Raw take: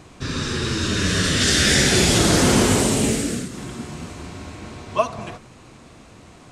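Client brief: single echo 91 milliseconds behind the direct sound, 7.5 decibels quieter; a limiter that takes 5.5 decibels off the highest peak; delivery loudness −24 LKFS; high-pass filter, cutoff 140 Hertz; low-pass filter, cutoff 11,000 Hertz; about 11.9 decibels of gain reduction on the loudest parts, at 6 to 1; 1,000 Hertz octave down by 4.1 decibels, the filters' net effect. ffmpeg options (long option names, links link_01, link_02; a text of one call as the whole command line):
ffmpeg -i in.wav -af "highpass=140,lowpass=11000,equalizer=frequency=1000:width_type=o:gain=-5.5,acompressor=threshold=-27dB:ratio=6,alimiter=limit=-22.5dB:level=0:latency=1,aecho=1:1:91:0.422,volume=7.5dB" out.wav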